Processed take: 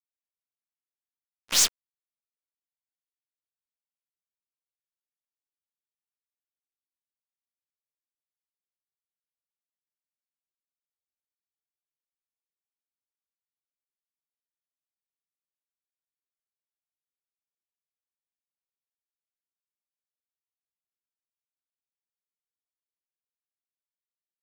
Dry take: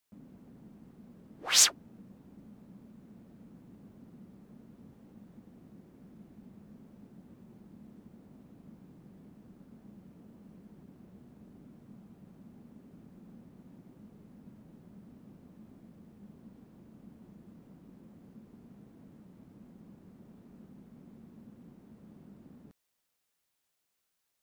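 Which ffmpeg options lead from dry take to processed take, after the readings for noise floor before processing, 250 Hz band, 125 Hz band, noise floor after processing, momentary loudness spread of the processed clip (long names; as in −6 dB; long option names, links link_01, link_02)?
−81 dBFS, −13.5 dB, −12.5 dB, below −85 dBFS, 3 LU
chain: -af "aeval=exprs='(tanh(6.31*val(0)+0.3)-tanh(0.3))/6.31':channel_layout=same,acrusher=bits=3:mix=0:aa=0.5,volume=3dB"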